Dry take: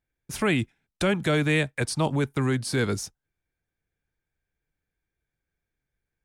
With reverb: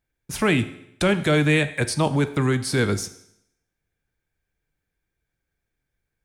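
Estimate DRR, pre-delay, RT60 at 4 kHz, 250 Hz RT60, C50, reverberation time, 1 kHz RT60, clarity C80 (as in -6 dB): 11.0 dB, 11 ms, 0.75 s, 0.75 s, 14.5 dB, 0.75 s, 0.75 s, 17.0 dB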